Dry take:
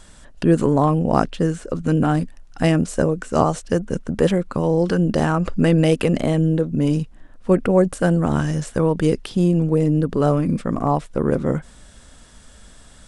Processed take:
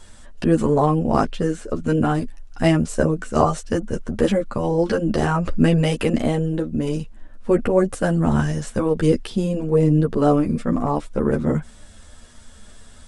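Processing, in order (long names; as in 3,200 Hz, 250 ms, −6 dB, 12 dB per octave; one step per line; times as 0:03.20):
multi-voice chorus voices 6, 0.42 Hz, delay 11 ms, depth 2.6 ms
level +2.5 dB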